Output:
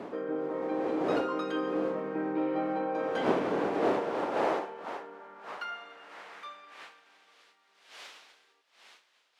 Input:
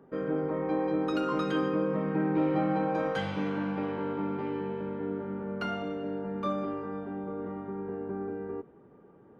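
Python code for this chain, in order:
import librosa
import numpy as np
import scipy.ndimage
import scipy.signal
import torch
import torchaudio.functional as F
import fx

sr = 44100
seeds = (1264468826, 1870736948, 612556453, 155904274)

y = fx.dmg_wind(x, sr, seeds[0], corner_hz=500.0, level_db=-29.0)
y = fx.filter_sweep_highpass(y, sr, from_hz=340.0, to_hz=3500.0, start_s=3.61, end_s=7.53, q=1.0)
y = F.gain(torch.from_numpy(y), -3.0).numpy()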